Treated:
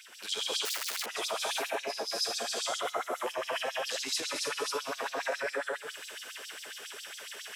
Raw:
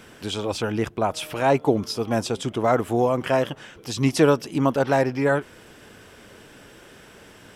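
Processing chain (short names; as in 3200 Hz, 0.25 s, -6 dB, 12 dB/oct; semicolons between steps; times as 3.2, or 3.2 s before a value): reverse delay 0.122 s, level -2 dB; non-linear reverb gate 0.35 s rising, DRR -6.5 dB; compressor 6:1, threshold -19 dBFS, peak gain reduction 14 dB; 0.65–1.06 wrapped overs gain 19 dB; passive tone stack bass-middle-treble 5-5-5; limiter -29 dBFS, peak gain reduction 8 dB; LFO high-pass sine 7.3 Hz 400–5100 Hz; gain +4.5 dB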